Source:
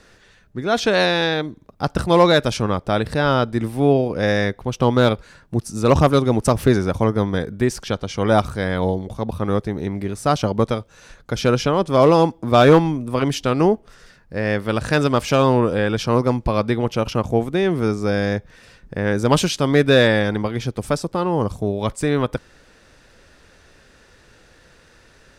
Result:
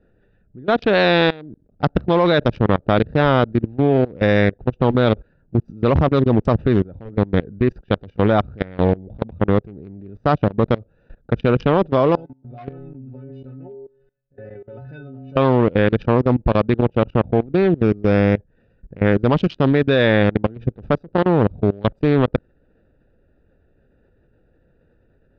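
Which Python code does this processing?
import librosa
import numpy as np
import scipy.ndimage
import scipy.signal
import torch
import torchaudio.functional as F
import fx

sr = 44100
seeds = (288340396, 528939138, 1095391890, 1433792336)

y = fx.stiff_resonator(x, sr, f0_hz=130.0, decay_s=0.58, stiffness=0.008, at=(12.15, 15.37))
y = fx.edit(y, sr, fx.fade_in_from(start_s=6.84, length_s=0.53, floor_db=-16.5), tone=tone)
y = fx.wiener(y, sr, points=41)
y = scipy.signal.sosfilt(scipy.signal.butter(4, 3800.0, 'lowpass', fs=sr, output='sos'), y)
y = fx.level_steps(y, sr, step_db=22)
y = y * librosa.db_to_amplitude(7.5)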